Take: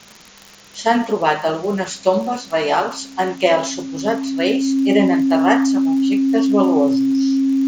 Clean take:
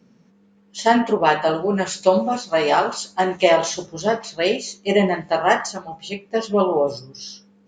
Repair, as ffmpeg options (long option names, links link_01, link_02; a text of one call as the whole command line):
ffmpeg -i in.wav -af "adeclick=threshold=4,bandreject=frequency=270:width=30,afftdn=noise_reduction=15:noise_floor=-40" out.wav